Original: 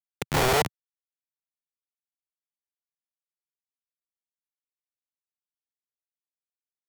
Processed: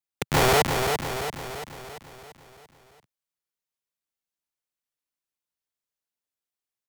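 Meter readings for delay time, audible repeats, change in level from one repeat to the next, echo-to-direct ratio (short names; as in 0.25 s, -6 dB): 0.34 s, 6, -5.5 dB, -4.0 dB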